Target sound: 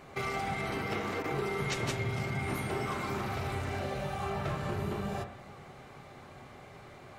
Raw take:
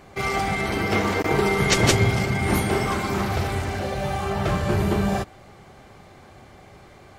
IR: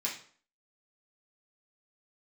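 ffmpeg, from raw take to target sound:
-filter_complex "[0:a]flanger=delay=5.7:depth=6.1:regen=-89:speed=1.5:shape=triangular,acompressor=threshold=-34dB:ratio=4,asplit=2[a][b];[1:a]atrim=start_sample=2205,asetrate=24255,aresample=44100,lowpass=3.3k[c];[b][c]afir=irnorm=-1:irlink=0,volume=-11.5dB[d];[a][d]amix=inputs=2:normalize=0"

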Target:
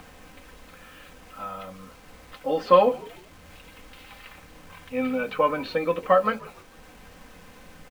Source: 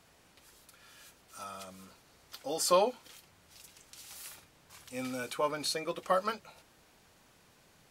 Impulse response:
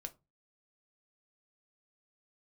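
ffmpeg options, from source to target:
-filter_complex "[0:a]lowpass=f=2.9k:w=0.5412,lowpass=f=2.9k:w=1.3066,lowshelf=f=140:g=8,aecho=1:1:3.9:0.67,acompressor=mode=upward:threshold=-48dB:ratio=2.5,acrusher=bits=9:mix=0:aa=0.000001,asplit=4[a][b][c][d];[b]adelay=149,afreqshift=-60,volume=-22dB[e];[c]adelay=298,afreqshift=-120,volume=-30.2dB[f];[d]adelay=447,afreqshift=-180,volume=-38.4dB[g];[a][e][f][g]amix=inputs=4:normalize=0,asplit=2[h][i];[1:a]atrim=start_sample=2205[j];[i][j]afir=irnorm=-1:irlink=0,volume=3.5dB[k];[h][k]amix=inputs=2:normalize=0,volume=1.5dB"

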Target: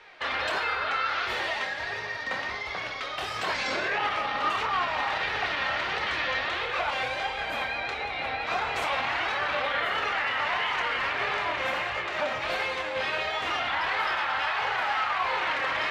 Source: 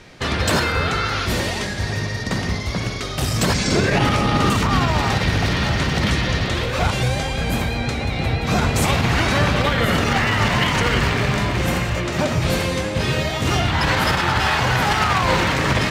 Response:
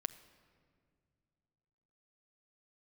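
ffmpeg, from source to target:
-filter_complex "[0:a]acrossover=split=550 3700:gain=0.0631 1 0.0891[a][b][c];[a][b][c]amix=inputs=3:normalize=0,alimiter=limit=-17.5dB:level=0:latency=1:release=31,flanger=delay=2.3:depth=1.5:regen=48:speed=1.5:shape=sinusoidal,asplit=2[d][e];[1:a]atrim=start_sample=2205,adelay=27[f];[e][f]afir=irnorm=-1:irlink=0,volume=-7dB[g];[d][g]amix=inputs=2:normalize=0,volume=1.5dB"

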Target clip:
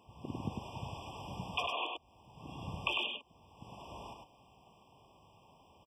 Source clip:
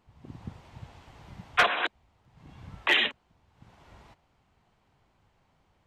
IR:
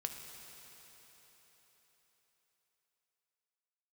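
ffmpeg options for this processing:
-filter_complex "[0:a]highpass=48,lowshelf=f=230:g=-9.5,acompressor=threshold=-39dB:ratio=12,asplit=2[a][b];[b]aecho=0:1:100:0.631[c];[a][c]amix=inputs=2:normalize=0,afftfilt=real='re*eq(mod(floor(b*sr/1024/1200),2),0)':imag='im*eq(mod(floor(b*sr/1024/1200),2),0)':win_size=1024:overlap=0.75,volume=8.5dB"

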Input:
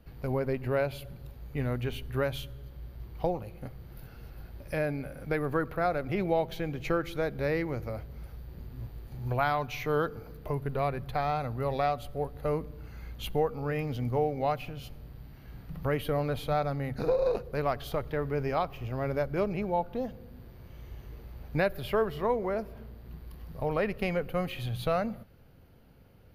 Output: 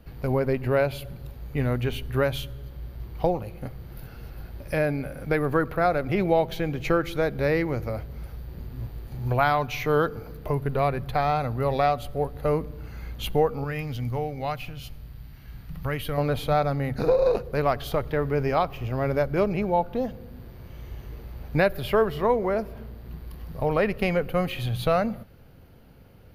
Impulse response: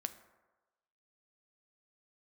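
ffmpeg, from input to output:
-filter_complex "[0:a]asettb=1/sr,asplit=3[a][b][c];[a]atrim=end=13.644[d];[b]atrim=start=13.64:end=16.18,asetpts=PTS-STARTPTS,afade=t=in:d=0.004:c=qsin,afade=t=out:st=2.536:d=0.004:c=qsin,equalizer=f=440:w=0.46:g=-9[e];[c]atrim=start=16.176[f];[d][e]acrossfade=d=0.004:c1=hsin:c2=qsin[g];[g][f]acrossfade=d=0.004:c1=qsin:c2=hsin,volume=6dB"

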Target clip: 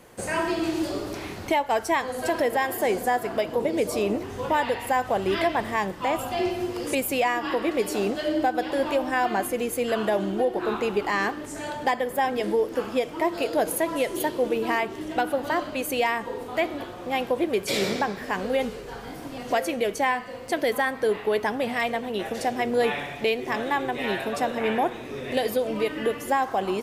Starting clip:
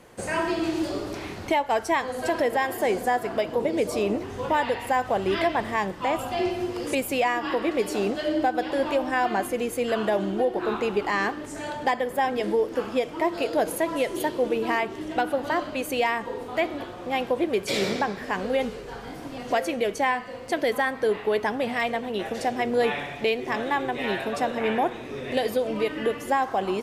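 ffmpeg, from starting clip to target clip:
-af "highshelf=f=12k:g=10.5"

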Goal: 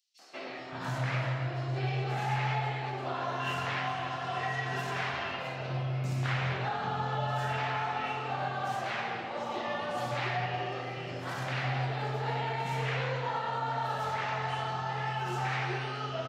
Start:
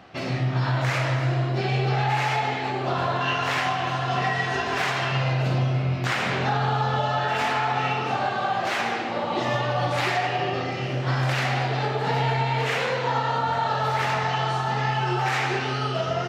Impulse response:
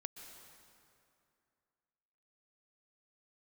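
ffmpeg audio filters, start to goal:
-filter_complex "[0:a]acrossover=split=280|5100[a][b][c];[b]adelay=190[d];[a]adelay=580[e];[e][d][c]amix=inputs=3:normalize=0,volume=-8.5dB"

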